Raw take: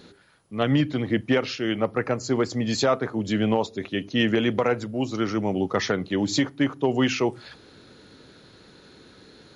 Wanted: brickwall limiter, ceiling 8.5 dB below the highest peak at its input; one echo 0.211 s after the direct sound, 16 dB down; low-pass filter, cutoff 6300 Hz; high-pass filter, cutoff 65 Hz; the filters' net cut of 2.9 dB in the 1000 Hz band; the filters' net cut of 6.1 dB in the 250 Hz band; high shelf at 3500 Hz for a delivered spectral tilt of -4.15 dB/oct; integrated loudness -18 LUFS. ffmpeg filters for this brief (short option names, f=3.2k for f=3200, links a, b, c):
-af "highpass=65,lowpass=6.3k,equalizer=f=250:t=o:g=-7.5,equalizer=f=1k:t=o:g=-4.5,highshelf=f=3.5k:g=8.5,alimiter=limit=-16dB:level=0:latency=1,aecho=1:1:211:0.158,volume=10.5dB"